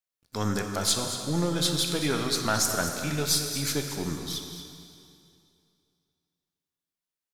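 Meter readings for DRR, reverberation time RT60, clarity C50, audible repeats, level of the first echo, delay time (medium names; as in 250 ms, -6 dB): 3.0 dB, 2.5 s, 4.0 dB, 1, -11.0 dB, 227 ms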